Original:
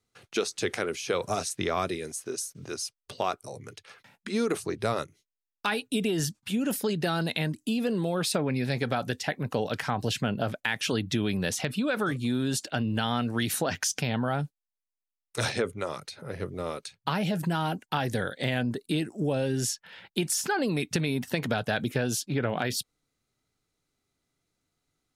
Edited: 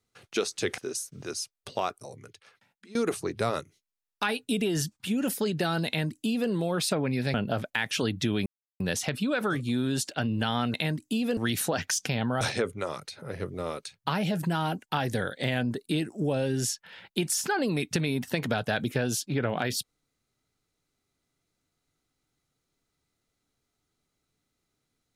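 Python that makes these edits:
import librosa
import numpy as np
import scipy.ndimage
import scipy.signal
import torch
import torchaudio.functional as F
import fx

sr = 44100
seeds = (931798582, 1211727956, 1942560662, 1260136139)

y = fx.edit(x, sr, fx.cut(start_s=0.78, length_s=1.43),
    fx.fade_out_to(start_s=3.13, length_s=1.25, floor_db=-21.0),
    fx.duplicate(start_s=7.3, length_s=0.63, to_s=13.3),
    fx.cut(start_s=8.77, length_s=1.47),
    fx.insert_silence(at_s=11.36, length_s=0.34),
    fx.cut(start_s=14.34, length_s=1.07), tone=tone)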